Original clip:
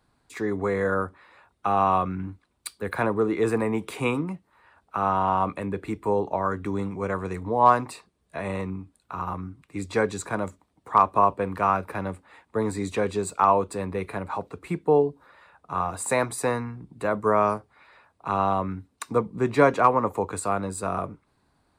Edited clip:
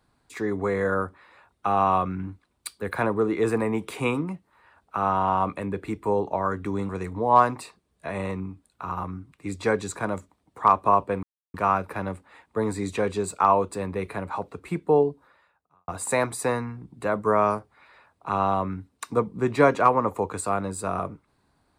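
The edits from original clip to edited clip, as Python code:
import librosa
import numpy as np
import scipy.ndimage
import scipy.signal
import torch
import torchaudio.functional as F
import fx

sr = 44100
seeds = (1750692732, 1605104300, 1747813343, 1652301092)

y = fx.edit(x, sr, fx.cut(start_s=6.89, length_s=0.3),
    fx.insert_silence(at_s=11.53, length_s=0.31),
    fx.fade_out_span(start_s=15.09, length_s=0.78, curve='qua'), tone=tone)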